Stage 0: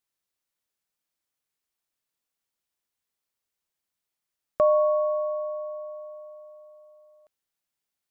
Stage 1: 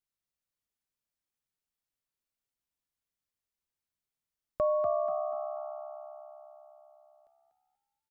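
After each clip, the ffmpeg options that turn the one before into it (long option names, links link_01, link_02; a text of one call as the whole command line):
ffmpeg -i in.wav -filter_complex "[0:a]lowshelf=frequency=140:gain=11.5,asplit=2[link_01][link_02];[link_02]asplit=4[link_03][link_04][link_05][link_06];[link_03]adelay=242,afreqshift=68,volume=-6.5dB[link_07];[link_04]adelay=484,afreqshift=136,volume=-15.4dB[link_08];[link_05]adelay=726,afreqshift=204,volume=-24.2dB[link_09];[link_06]adelay=968,afreqshift=272,volume=-33.1dB[link_10];[link_07][link_08][link_09][link_10]amix=inputs=4:normalize=0[link_11];[link_01][link_11]amix=inputs=2:normalize=0,volume=-8.5dB" out.wav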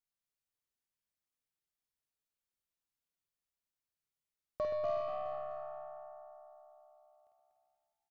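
ffmpeg -i in.wav -af "aeval=exprs='0.106*(cos(1*acos(clip(val(0)/0.106,-1,1)))-cos(1*PI/2))+0.00299*(cos(5*acos(clip(val(0)/0.106,-1,1)))-cos(5*PI/2))+0.00299*(cos(8*acos(clip(val(0)/0.106,-1,1)))-cos(8*PI/2))':channel_layout=same,aecho=1:1:50|125|237.5|406.2|659.4:0.631|0.398|0.251|0.158|0.1,volume=-7dB" out.wav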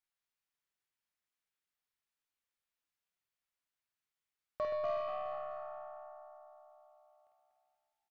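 ffmpeg -i in.wav -filter_complex "[0:a]equalizer=frequency=1800:width=0.48:gain=8.5,asplit=2[link_01][link_02];[link_02]adelay=26,volume=-13dB[link_03];[link_01][link_03]amix=inputs=2:normalize=0,volume=-4.5dB" out.wav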